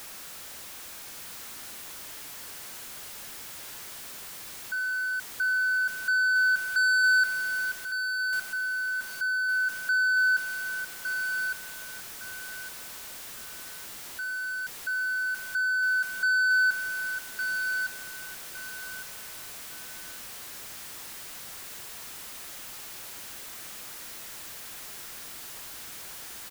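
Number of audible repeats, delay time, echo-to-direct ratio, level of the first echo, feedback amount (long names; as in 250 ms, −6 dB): 3, 1,160 ms, −6.5 dB, −7.0 dB, 25%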